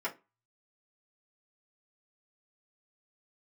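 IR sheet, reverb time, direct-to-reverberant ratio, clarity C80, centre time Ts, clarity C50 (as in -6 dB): 0.25 s, -7.0 dB, 25.0 dB, 12 ms, 17.0 dB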